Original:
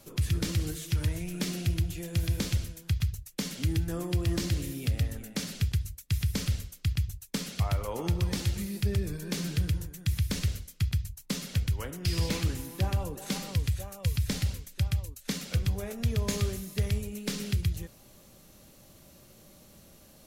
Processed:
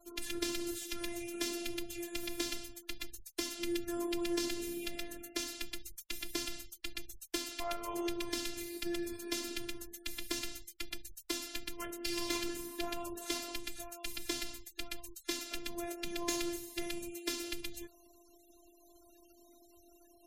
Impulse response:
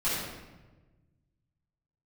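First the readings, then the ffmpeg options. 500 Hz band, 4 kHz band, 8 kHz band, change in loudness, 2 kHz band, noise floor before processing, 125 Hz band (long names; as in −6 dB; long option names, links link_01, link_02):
−2.0 dB, −2.0 dB, −2.0 dB, −8.0 dB, −2.0 dB, −56 dBFS, −31.0 dB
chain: -filter_complex "[0:a]highpass=frequency=77:poles=1,afftfilt=real='hypot(re,im)*cos(PI*b)':imag='0':win_size=512:overlap=0.75,bandreject=frequency=282.8:width_type=h:width=4,bandreject=frequency=565.6:width_type=h:width=4,bandreject=frequency=848.4:width_type=h:width=4,acrossover=split=160[link_01][link_02];[link_01]acompressor=threshold=-43dB:ratio=4[link_03];[link_03][link_02]amix=inputs=2:normalize=0,afftfilt=real='re*gte(hypot(re,im),0.00178)':imag='im*gte(hypot(re,im),0.00178)':win_size=1024:overlap=0.75,volume=1.5dB"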